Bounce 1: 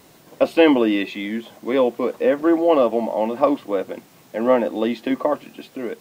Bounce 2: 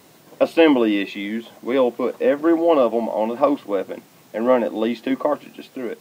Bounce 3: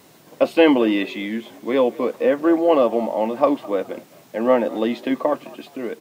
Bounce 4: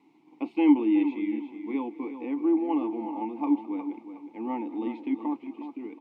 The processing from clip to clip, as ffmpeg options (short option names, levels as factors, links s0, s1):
-af "highpass=87"
-filter_complex "[0:a]asplit=3[s0][s1][s2];[s1]adelay=209,afreqshift=55,volume=0.0891[s3];[s2]adelay=418,afreqshift=110,volume=0.0285[s4];[s0][s3][s4]amix=inputs=3:normalize=0"
-filter_complex "[0:a]asplit=3[s0][s1][s2];[s0]bandpass=f=300:t=q:w=8,volume=1[s3];[s1]bandpass=f=870:t=q:w=8,volume=0.501[s4];[s2]bandpass=f=2240:t=q:w=8,volume=0.355[s5];[s3][s4][s5]amix=inputs=3:normalize=0,asplit=2[s6][s7];[s7]adelay=364,lowpass=f=3700:p=1,volume=0.316,asplit=2[s8][s9];[s9]adelay=364,lowpass=f=3700:p=1,volume=0.31,asplit=2[s10][s11];[s11]adelay=364,lowpass=f=3700:p=1,volume=0.31[s12];[s6][s8][s10][s12]amix=inputs=4:normalize=0"